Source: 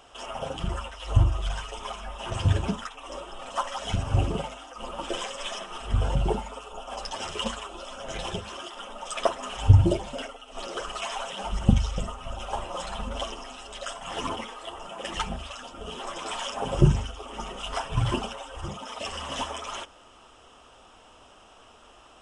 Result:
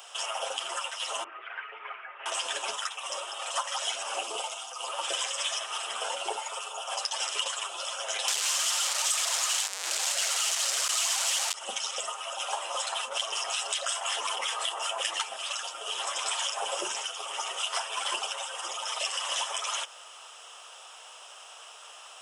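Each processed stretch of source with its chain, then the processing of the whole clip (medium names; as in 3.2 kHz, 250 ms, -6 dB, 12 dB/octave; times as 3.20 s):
1.24–2.26 s: elliptic low-pass 2.2 kHz, stop band 80 dB + high-order bell 760 Hz -11 dB 1.3 oct
4.23–4.88 s: peaking EQ 1.8 kHz -10 dB 0.62 oct + band-stop 560 Hz
8.28–11.54 s: one-bit comparator + resonant low-pass 7.5 kHz, resonance Q 1.8 + bass shelf 370 Hz -12 dB
12.92–15.21 s: harmonic tremolo 5.4 Hz, crossover 1.3 kHz + level flattener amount 70%
whole clip: high-pass 490 Hz 24 dB/octave; tilt EQ +3.5 dB/octave; compression 3:1, threshold -32 dBFS; trim +3 dB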